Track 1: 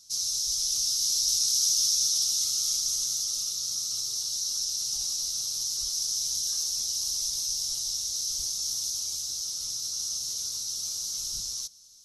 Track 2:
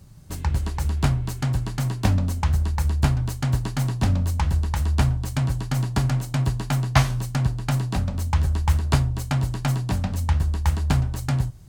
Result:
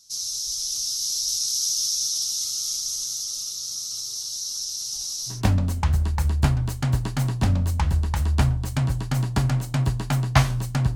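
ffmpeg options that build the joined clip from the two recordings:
ffmpeg -i cue0.wav -i cue1.wav -filter_complex "[0:a]apad=whole_dur=10.95,atrim=end=10.95,atrim=end=5.42,asetpts=PTS-STARTPTS[link_01];[1:a]atrim=start=1.86:end=7.55,asetpts=PTS-STARTPTS[link_02];[link_01][link_02]acrossfade=duration=0.16:curve1=tri:curve2=tri" out.wav

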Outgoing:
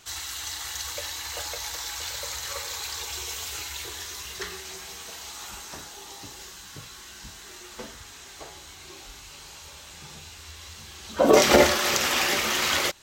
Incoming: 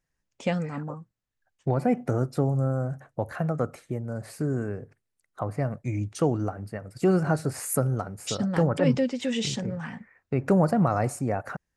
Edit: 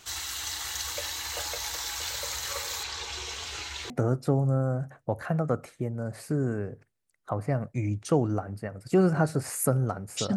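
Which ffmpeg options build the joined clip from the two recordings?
ffmpeg -i cue0.wav -i cue1.wav -filter_complex "[0:a]asettb=1/sr,asplit=3[link_01][link_02][link_03];[link_01]atrim=end=2.834[link_04];[link_02]atrim=start=2.83:end=3.9,asetpts=PTS-STARTPTS,afade=type=in:duration=0.004:curve=qsin,afade=type=out:start_time=1.066:duration=0.004:curve=qsin,lowpass=5400[link_05];[link_03]atrim=start=3.896[link_06];[link_04][link_05]acrossfade=duration=0.004:curve1=hsin:curve2=qsin[link_07];[link_07][link_06]acrossfade=duration=0.004:curve1=qsin:curve2=hsin,apad=whole_dur=10.36,atrim=end=10.36,atrim=end=3.902[link_08];[1:a]atrim=start=1.998:end=8.46[link_09];[link_08][link_09]acrossfade=duration=0.004:curve1=hsin:curve2=hsin" out.wav

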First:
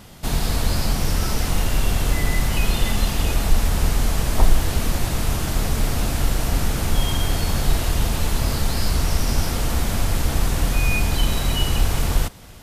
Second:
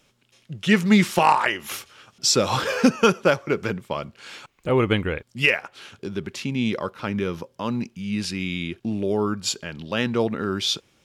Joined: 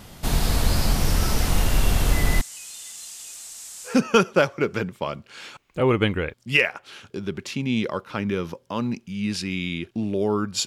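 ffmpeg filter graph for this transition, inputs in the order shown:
ffmpeg -i cue0.wav -i cue1.wav -filter_complex "[0:a]asettb=1/sr,asplit=3[link_01][link_02][link_03];[link_01]atrim=end=2.414[link_04];[link_02]atrim=start=2.41:end=4.02,asetpts=PTS-STARTPTS,afade=type=in:duration=0.004:curve=qsin,afade=type=out:start_time=1.606:duration=0.004:curve=qsin,bandpass=frequency=7600:width_type=q:width=2.7:csg=0[link_05];[link_03]atrim=start=4.016[link_06];[link_04][link_05]acrossfade=duration=0.004:curve1=hsin:curve2=qsin[link_07];[link_07][link_06]acrossfade=duration=0.004:curve1=qsin:curve2=hsin,apad=whole_dur=10.66,atrim=end=10.66,atrim=end=4.02,asetpts=PTS-STARTPTS[link_08];[1:a]atrim=start=2.73:end=9.55,asetpts=PTS-STARTPTS[link_09];[link_08][link_09]acrossfade=duration=0.18:curve1=tri:curve2=tri" out.wav

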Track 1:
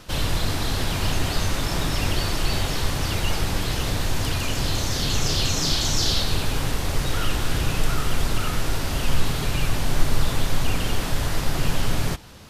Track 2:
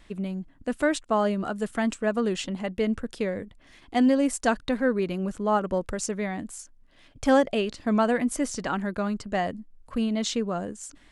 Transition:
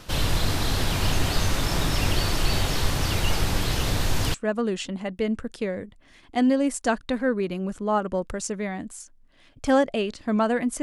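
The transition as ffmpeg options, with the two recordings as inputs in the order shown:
ffmpeg -i cue0.wav -i cue1.wav -filter_complex "[0:a]apad=whole_dur=10.82,atrim=end=10.82,atrim=end=4.342[link_01];[1:a]atrim=start=1.928:end=8.41[link_02];[link_01][link_02]acrossfade=duration=0.004:curve1=hsin:curve2=hsin" out.wav

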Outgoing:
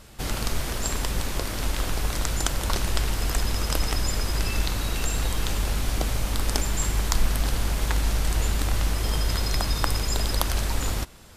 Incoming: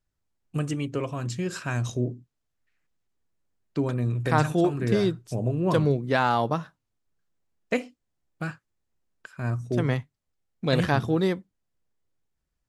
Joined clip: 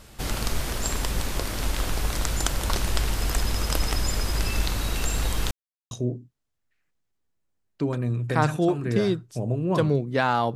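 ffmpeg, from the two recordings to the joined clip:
ffmpeg -i cue0.wav -i cue1.wav -filter_complex "[0:a]apad=whole_dur=10.55,atrim=end=10.55,asplit=2[link_01][link_02];[link_01]atrim=end=5.51,asetpts=PTS-STARTPTS,afade=type=out:start_time=5.506:duration=0.004:curve=hsin[link_03];[link_02]atrim=start=5.51:end=5.91,asetpts=PTS-STARTPTS,volume=0[link_04];[1:a]atrim=start=1.87:end=6.51,asetpts=PTS-STARTPTS,afade=type=in:duration=0.004:curve=hsin[link_05];[link_03][link_04][link_05]concat=n=3:v=0:a=1" out.wav

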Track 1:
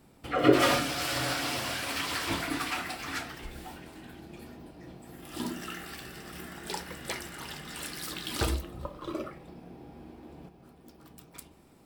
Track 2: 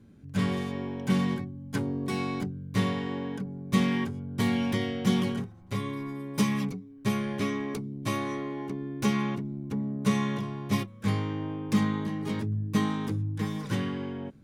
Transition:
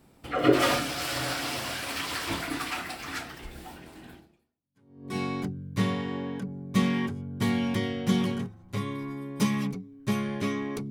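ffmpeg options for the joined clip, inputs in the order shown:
ffmpeg -i cue0.wav -i cue1.wav -filter_complex "[0:a]apad=whole_dur=10.9,atrim=end=10.9,atrim=end=5.16,asetpts=PTS-STARTPTS[link_01];[1:a]atrim=start=1.12:end=7.88,asetpts=PTS-STARTPTS[link_02];[link_01][link_02]acrossfade=duration=1.02:curve1=exp:curve2=exp" out.wav

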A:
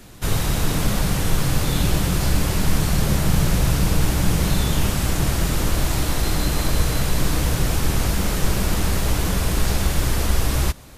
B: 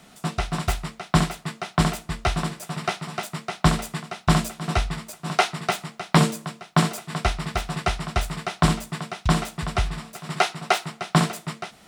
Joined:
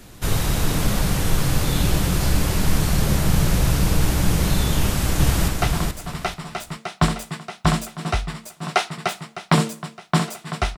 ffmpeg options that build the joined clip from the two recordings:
ffmpeg -i cue0.wav -i cue1.wav -filter_complex "[0:a]apad=whole_dur=10.77,atrim=end=10.77,atrim=end=5.482[link_01];[1:a]atrim=start=2.108:end=7.4[link_02];[link_01][link_02]acrossfade=duration=0.004:curve1=hsin:curve2=hsin,asplit=2[link_03][link_04];[link_04]afade=type=in:start_time=4.76:duration=0.01,afade=type=out:start_time=5.48:duration=0.01,aecho=0:1:430|860|1290:0.630957|0.157739|0.0394348[link_05];[link_03][link_05]amix=inputs=2:normalize=0" out.wav

